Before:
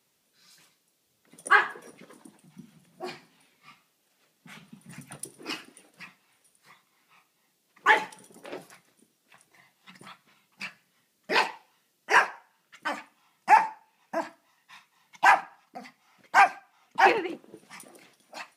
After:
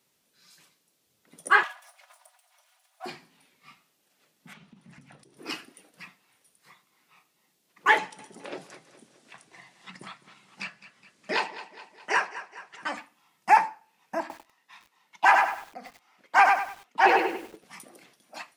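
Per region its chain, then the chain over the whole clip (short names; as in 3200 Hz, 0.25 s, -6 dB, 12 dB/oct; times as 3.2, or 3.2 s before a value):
1.63–3.06 minimum comb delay 4.1 ms + brick-wall FIR high-pass 560 Hz
4.53–5.37 compressor 5:1, threshold -47 dBFS + air absorption 71 m + Doppler distortion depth 0.15 ms
7.98–12.97 LPF 9300 Hz 24 dB/oct + feedback echo 0.208 s, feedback 39%, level -16.5 dB + three-band squash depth 40%
14.2–17.64 HPF 240 Hz + high shelf 5900 Hz -6.5 dB + lo-fi delay 98 ms, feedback 35%, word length 8-bit, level -4 dB
whole clip: dry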